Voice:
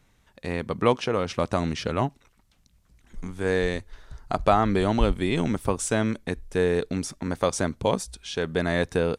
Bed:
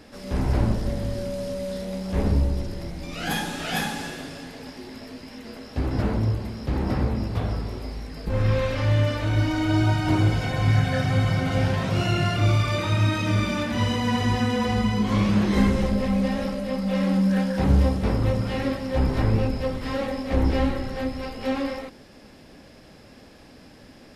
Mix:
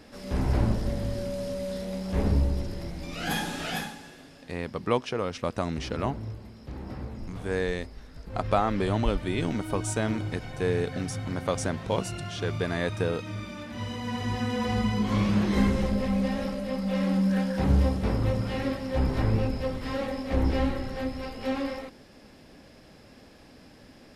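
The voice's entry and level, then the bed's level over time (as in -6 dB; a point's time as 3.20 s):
4.05 s, -4.5 dB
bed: 3.67 s -2.5 dB
4.00 s -13.5 dB
13.56 s -13.5 dB
14.75 s -3.5 dB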